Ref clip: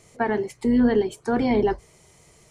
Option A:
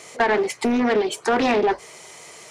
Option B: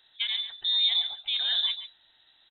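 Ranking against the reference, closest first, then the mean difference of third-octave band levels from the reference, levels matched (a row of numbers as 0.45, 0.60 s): A, B; 8.0, 13.5 dB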